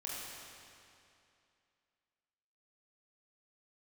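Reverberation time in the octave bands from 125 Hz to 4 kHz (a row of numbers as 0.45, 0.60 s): 2.5, 2.6, 2.6, 2.6, 2.5, 2.3 s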